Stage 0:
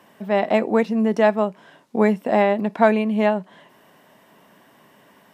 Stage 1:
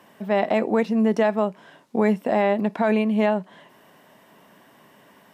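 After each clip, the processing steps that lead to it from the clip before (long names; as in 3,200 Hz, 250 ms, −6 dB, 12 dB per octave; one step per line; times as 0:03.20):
brickwall limiter −10 dBFS, peak gain reduction 8.5 dB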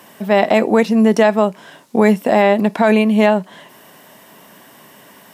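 high-shelf EQ 4,400 Hz +10.5 dB
level +7.5 dB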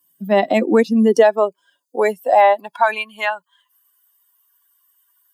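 spectral dynamics exaggerated over time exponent 2
high-pass filter sweep 190 Hz → 1,200 Hz, 0:00.23–0:03.22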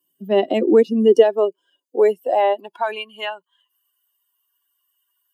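hollow resonant body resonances 370/2,900 Hz, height 16 dB, ringing for 20 ms
level −10 dB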